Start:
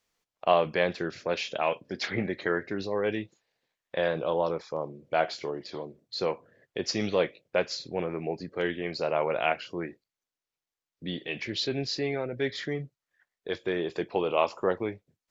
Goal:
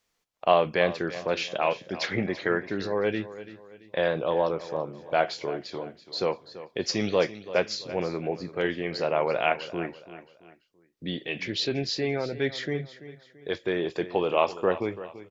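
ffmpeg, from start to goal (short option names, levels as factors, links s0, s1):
-af "aecho=1:1:336|672|1008:0.178|0.0676|0.0257,volume=1.26"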